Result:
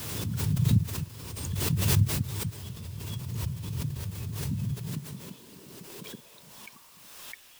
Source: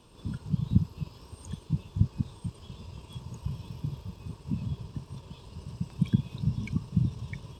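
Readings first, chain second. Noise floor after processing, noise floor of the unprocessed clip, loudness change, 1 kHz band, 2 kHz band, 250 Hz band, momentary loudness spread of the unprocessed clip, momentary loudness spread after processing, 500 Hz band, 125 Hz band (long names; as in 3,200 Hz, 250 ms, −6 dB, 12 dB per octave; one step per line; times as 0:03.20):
−54 dBFS, −53 dBFS, +2.5 dB, +6.5 dB, +9.0 dB, −2.0 dB, 16 LU, 22 LU, +7.5 dB, +1.5 dB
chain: parametric band 830 Hz −6 dB 1.2 octaves
in parallel at 0 dB: downward compressor 6 to 1, threshold −38 dBFS, peak gain reduction 20.5 dB
on the sum: high-pass filter sweep 99 Hz → 1,900 Hz, 0:04.55–0:07.51
bit-depth reduction 8 bits, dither triangular
background raised ahead of every attack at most 32 dB per second
level −7.5 dB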